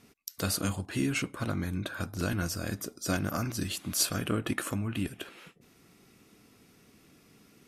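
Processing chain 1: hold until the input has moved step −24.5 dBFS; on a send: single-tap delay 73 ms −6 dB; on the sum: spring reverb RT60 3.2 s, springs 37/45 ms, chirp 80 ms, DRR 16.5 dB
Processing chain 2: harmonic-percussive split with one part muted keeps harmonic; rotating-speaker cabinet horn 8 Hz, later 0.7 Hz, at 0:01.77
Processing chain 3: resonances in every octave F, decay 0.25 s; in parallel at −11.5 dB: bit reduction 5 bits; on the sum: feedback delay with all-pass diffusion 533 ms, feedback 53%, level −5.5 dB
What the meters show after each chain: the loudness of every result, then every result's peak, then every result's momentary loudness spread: −32.0, −38.5, −42.0 LKFS; −13.0, −22.0, −22.5 dBFS; 11, 9, 18 LU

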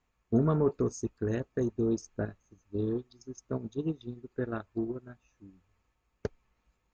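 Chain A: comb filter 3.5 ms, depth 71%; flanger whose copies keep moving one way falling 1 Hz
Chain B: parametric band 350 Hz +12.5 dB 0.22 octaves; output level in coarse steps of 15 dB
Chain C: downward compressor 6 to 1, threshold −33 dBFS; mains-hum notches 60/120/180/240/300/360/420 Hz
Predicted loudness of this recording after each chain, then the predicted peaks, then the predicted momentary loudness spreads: −37.5, −35.5, −41.0 LKFS; −18.5, −17.5, −19.5 dBFS; 15, 10, 11 LU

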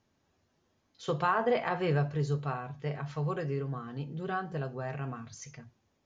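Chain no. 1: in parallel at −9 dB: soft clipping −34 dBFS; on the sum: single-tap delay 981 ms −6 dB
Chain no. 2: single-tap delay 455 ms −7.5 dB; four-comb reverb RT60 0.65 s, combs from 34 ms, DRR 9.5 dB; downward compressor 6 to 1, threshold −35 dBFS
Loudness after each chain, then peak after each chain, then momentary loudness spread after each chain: −31.0, −39.5 LKFS; −16.5, −25.0 dBFS; 10, 4 LU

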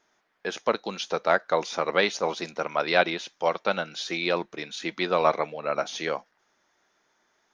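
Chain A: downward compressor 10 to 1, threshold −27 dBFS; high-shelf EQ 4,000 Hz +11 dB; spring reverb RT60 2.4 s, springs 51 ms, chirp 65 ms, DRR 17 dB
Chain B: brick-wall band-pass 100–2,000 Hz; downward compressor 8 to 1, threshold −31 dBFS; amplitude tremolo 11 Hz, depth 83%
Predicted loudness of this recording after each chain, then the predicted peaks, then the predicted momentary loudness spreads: −31.0, −42.0 LKFS; −12.5, −20.5 dBFS; 5, 6 LU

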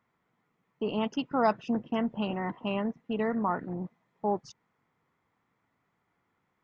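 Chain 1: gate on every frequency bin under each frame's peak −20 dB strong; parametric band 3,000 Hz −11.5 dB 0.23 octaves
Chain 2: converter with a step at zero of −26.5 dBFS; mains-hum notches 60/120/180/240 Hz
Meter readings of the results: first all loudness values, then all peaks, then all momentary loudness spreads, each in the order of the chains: −32.0, −28.5 LKFS; −13.5, −11.5 dBFS; 8, 7 LU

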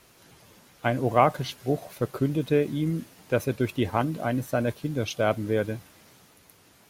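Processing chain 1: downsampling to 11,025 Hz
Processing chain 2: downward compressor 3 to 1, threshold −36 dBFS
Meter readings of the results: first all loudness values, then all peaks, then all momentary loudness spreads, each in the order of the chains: −27.0, −38.5 LKFS; −5.5, −18.0 dBFS; 8, 17 LU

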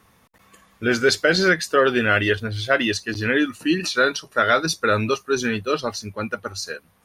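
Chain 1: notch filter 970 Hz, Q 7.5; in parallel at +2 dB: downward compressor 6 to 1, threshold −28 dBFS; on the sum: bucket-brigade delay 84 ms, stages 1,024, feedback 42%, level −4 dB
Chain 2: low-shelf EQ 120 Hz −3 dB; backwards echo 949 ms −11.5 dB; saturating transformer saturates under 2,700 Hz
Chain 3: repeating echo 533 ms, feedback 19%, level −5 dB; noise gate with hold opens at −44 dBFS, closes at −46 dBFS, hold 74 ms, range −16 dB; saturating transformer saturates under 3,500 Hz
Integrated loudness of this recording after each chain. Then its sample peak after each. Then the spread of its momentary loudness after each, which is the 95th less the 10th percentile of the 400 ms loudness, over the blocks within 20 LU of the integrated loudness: −17.0, −25.0, −24.0 LKFS; −1.5, −5.5, −4.0 dBFS; 8, 9, 7 LU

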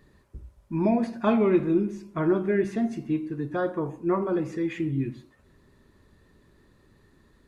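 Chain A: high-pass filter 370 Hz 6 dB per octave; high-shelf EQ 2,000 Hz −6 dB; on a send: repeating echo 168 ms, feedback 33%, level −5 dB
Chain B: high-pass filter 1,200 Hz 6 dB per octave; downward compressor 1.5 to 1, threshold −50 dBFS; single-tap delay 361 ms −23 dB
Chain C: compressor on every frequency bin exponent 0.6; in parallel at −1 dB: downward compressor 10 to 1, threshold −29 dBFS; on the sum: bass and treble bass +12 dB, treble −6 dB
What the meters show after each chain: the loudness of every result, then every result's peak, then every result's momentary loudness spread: −29.0, −43.5, −16.5 LKFS; −13.5, −26.5, −2.0 dBFS; 8, 7, 17 LU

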